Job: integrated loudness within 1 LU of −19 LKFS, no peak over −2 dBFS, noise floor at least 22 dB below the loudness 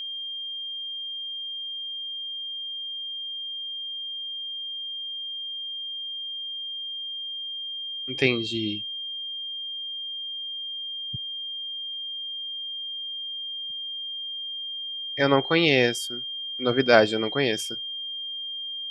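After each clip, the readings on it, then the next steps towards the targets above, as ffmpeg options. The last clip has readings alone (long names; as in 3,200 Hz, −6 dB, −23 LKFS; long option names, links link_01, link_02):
interfering tone 3,200 Hz; level of the tone −31 dBFS; integrated loudness −28.0 LKFS; sample peak −1.0 dBFS; target loudness −19.0 LKFS
→ -af "bandreject=frequency=3200:width=30"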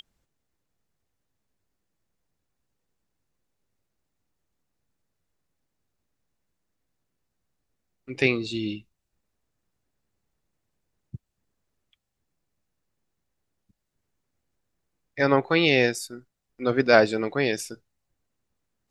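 interfering tone none found; integrated loudness −23.0 LKFS; sample peak −1.0 dBFS; target loudness −19.0 LKFS
→ -af "volume=4dB,alimiter=limit=-2dB:level=0:latency=1"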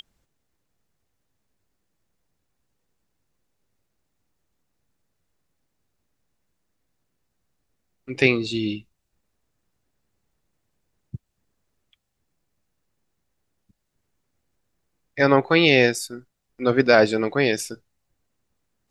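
integrated loudness −19.5 LKFS; sample peak −2.0 dBFS; background noise floor −76 dBFS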